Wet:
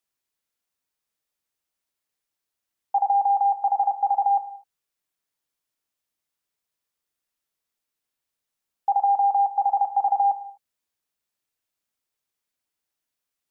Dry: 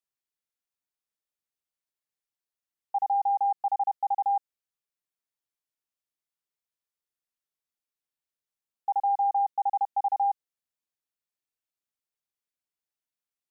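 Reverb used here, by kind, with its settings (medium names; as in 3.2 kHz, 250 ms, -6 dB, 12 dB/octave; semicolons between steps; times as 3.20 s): gated-style reverb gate 270 ms falling, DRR 9.5 dB; trim +7 dB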